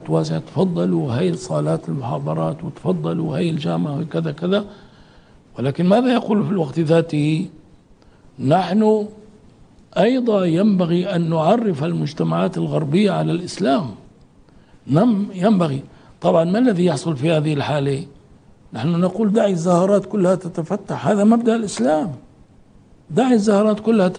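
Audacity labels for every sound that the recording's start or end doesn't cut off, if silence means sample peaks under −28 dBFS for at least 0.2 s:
5.580000	7.460000	sound
8.390000	9.090000	sound
9.930000	13.930000	sound
14.890000	15.800000	sound
16.220000	18.040000	sound
18.730000	22.150000	sound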